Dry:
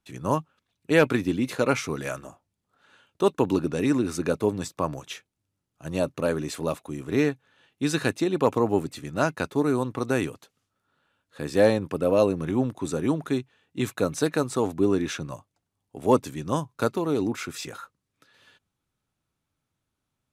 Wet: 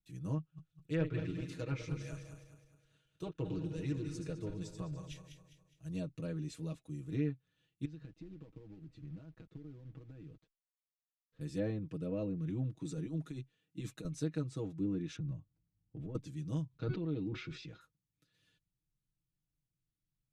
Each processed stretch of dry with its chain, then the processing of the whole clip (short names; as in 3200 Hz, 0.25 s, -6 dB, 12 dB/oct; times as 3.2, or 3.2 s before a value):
0.38–5.9 regenerating reverse delay 0.103 s, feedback 64%, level -7 dB + bell 230 Hz -12.5 dB 0.48 oct + Doppler distortion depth 0.1 ms
7.85–11.41 compressor 16:1, threshold -33 dBFS + companded quantiser 4-bit + tape spacing loss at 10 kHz 33 dB
12.8–14.05 HPF 140 Hz + negative-ratio compressor -28 dBFS
15.16–16.15 LPF 2800 Hz + low shelf 400 Hz +9.5 dB + compressor 5:1, threshold -28 dBFS
16.69–17.81 LPF 4300 Hz 24 dB/oct + de-hum 370.5 Hz, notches 35 + sustainer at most 36 dB/s
whole clip: treble ducked by the level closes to 2200 Hz, closed at -17 dBFS; passive tone stack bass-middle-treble 10-0-1; comb 6.3 ms, depth 85%; gain +4 dB